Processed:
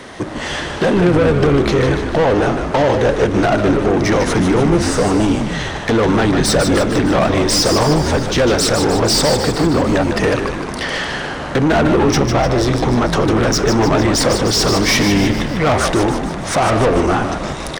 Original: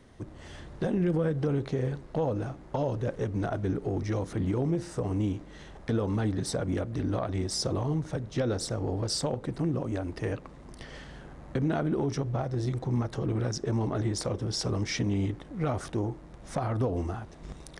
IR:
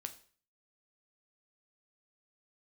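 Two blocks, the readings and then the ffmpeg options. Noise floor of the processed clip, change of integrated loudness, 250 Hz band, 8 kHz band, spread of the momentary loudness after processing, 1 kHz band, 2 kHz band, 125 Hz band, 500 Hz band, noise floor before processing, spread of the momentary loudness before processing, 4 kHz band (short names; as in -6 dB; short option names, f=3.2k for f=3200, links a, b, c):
-25 dBFS, +16.0 dB, +15.5 dB, +18.5 dB, 7 LU, +20.5 dB, +23.5 dB, +11.0 dB, +17.5 dB, -48 dBFS, 13 LU, +20.0 dB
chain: -filter_complex "[0:a]asplit=2[a][b];[b]highpass=f=720:p=1,volume=23dB,asoftclip=type=tanh:threshold=-18dB[c];[a][c]amix=inputs=2:normalize=0,lowpass=f=5.6k:p=1,volume=-6dB,asplit=9[d][e][f][g][h][i][j][k][l];[e]adelay=151,afreqshift=-74,volume=-6.5dB[m];[f]adelay=302,afreqshift=-148,volume=-11.2dB[n];[g]adelay=453,afreqshift=-222,volume=-16dB[o];[h]adelay=604,afreqshift=-296,volume=-20.7dB[p];[i]adelay=755,afreqshift=-370,volume=-25.4dB[q];[j]adelay=906,afreqshift=-444,volume=-30.2dB[r];[k]adelay=1057,afreqshift=-518,volume=-34.9dB[s];[l]adelay=1208,afreqshift=-592,volume=-39.6dB[t];[d][m][n][o][p][q][r][s][t]amix=inputs=9:normalize=0,asplit=2[u][v];[1:a]atrim=start_sample=2205[w];[v][w]afir=irnorm=-1:irlink=0,volume=-5.5dB[x];[u][x]amix=inputs=2:normalize=0,volume=8.5dB"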